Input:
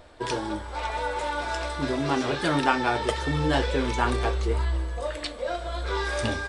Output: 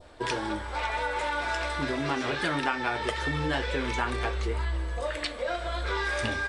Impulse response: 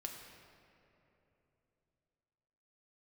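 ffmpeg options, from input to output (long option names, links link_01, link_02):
-af "adynamicequalizer=threshold=0.00794:dfrequency=2000:dqfactor=0.97:tfrequency=2000:tqfactor=0.97:attack=5:release=100:ratio=0.375:range=3.5:mode=boostabove:tftype=bell,acompressor=threshold=-27dB:ratio=3"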